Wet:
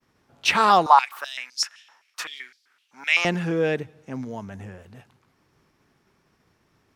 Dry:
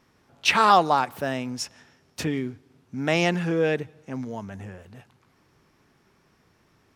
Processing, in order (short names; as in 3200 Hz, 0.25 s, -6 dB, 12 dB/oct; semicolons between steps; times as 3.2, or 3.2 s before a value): expander -59 dBFS; 0.86–3.25 stepped high-pass 7.8 Hz 950–4600 Hz